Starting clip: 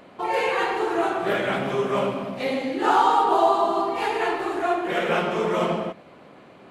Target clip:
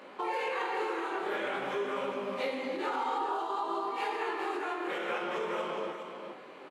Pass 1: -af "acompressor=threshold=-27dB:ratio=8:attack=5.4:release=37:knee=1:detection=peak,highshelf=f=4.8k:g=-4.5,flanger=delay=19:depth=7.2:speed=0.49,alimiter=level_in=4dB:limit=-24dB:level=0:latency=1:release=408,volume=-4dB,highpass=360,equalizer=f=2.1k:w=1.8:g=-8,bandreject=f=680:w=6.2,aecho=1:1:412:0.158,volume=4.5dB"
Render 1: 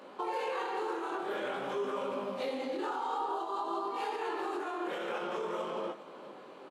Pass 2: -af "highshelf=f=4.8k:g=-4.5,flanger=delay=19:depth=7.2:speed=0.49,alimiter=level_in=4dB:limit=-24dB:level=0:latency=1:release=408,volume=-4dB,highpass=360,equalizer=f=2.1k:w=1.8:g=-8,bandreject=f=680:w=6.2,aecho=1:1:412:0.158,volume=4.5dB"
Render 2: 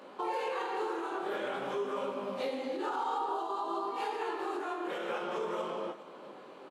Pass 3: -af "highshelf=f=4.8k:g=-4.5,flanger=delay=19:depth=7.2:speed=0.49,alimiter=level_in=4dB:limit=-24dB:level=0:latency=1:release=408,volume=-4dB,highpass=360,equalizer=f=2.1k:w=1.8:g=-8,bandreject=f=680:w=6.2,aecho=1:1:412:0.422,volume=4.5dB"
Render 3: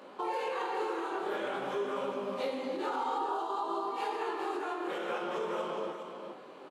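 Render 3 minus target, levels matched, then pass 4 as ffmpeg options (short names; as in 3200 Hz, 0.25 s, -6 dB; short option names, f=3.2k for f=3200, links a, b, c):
2000 Hz band -4.0 dB
-af "highshelf=f=4.8k:g=-4.5,flanger=delay=19:depth=7.2:speed=0.49,alimiter=level_in=4dB:limit=-24dB:level=0:latency=1:release=408,volume=-4dB,highpass=360,bandreject=f=680:w=6.2,aecho=1:1:412:0.422,volume=4.5dB"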